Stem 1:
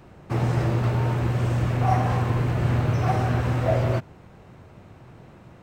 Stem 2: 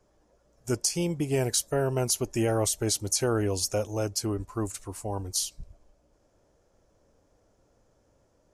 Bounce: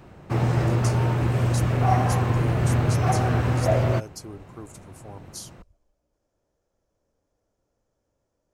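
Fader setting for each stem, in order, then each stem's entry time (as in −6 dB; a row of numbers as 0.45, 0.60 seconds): +1.0, −10.0 decibels; 0.00, 0.00 seconds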